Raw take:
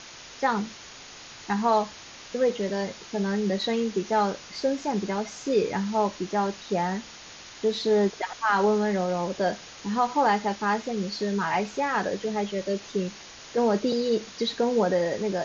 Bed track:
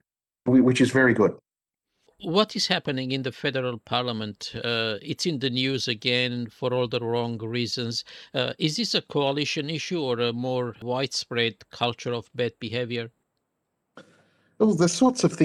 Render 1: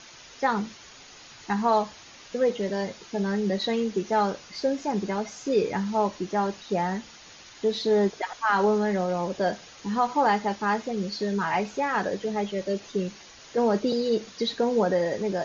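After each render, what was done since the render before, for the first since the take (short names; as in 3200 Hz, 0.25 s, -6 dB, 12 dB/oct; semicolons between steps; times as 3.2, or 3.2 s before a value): denoiser 6 dB, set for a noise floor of -45 dBFS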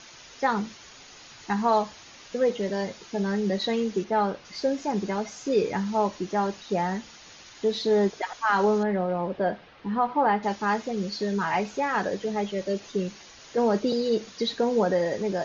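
4.04–4.45 air absorption 170 m; 8.83–10.43 Gaussian blur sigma 2.7 samples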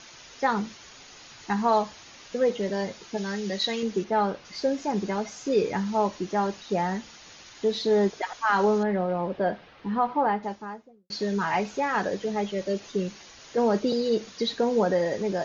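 3.17–3.83 tilt shelf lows -5.5 dB, about 1500 Hz; 9.98–11.1 studio fade out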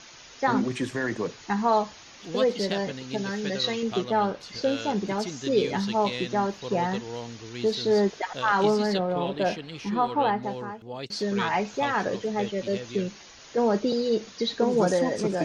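add bed track -10 dB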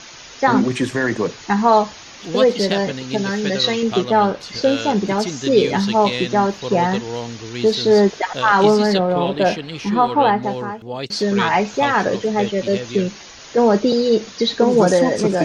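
gain +9 dB; limiter -3 dBFS, peak gain reduction 1.5 dB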